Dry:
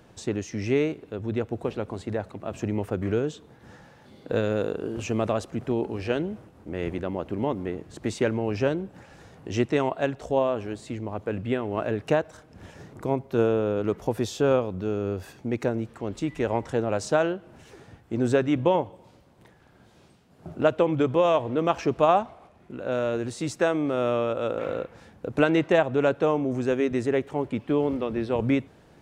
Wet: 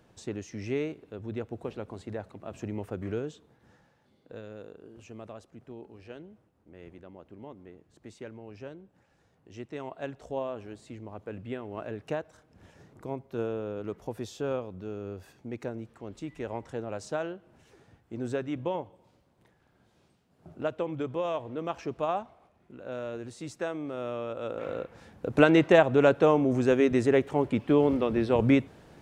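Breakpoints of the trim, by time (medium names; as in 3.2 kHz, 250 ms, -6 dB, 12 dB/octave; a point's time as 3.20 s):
3.19 s -7.5 dB
4.36 s -18.5 dB
9.55 s -18.5 dB
10.10 s -10 dB
24.16 s -10 dB
25.43 s +1.5 dB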